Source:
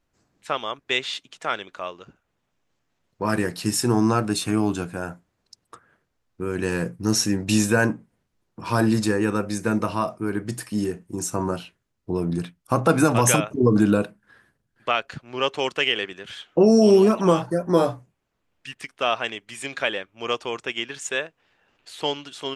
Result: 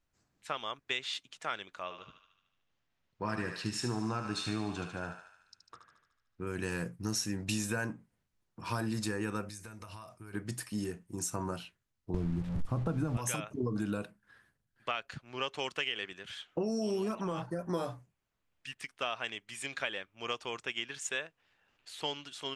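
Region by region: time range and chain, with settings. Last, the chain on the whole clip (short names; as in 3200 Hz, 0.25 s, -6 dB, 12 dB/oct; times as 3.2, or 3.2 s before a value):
1.83–6.47 LPF 5000 Hz + thinning echo 74 ms, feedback 66%, high-pass 790 Hz, level -6 dB
9.49–10.34 EQ curve 100 Hz 0 dB, 200 Hz -10 dB, 9800 Hz +2 dB + compressor 12:1, threshold -34 dBFS
12.14–13.17 delta modulation 64 kbps, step -26 dBFS + tilt -4.5 dB/oct
17.15–17.59 high shelf 4000 Hz -8 dB + compressor, threshold -18 dBFS
whole clip: bell 390 Hz -5.5 dB 2.5 oct; compressor, threshold -24 dBFS; gain -6 dB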